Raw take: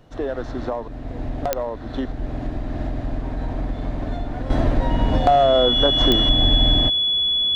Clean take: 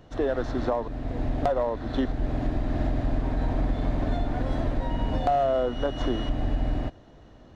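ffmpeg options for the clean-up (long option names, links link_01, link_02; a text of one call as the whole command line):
ffmpeg -i in.wav -af "adeclick=threshold=4,bandreject=frequency=3400:width=30,agate=range=-21dB:threshold=-23dB,asetnsamples=nb_out_samples=441:pad=0,asendcmd='4.5 volume volume -8dB',volume=0dB" out.wav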